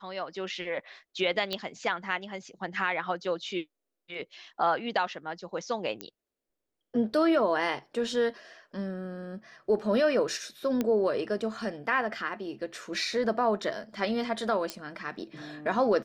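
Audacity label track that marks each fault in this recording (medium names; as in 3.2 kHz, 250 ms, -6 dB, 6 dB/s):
1.530000	1.530000	pop -17 dBFS
6.010000	6.010000	pop -19 dBFS
10.810000	10.810000	pop -15 dBFS
14.700000	14.700000	pop -16 dBFS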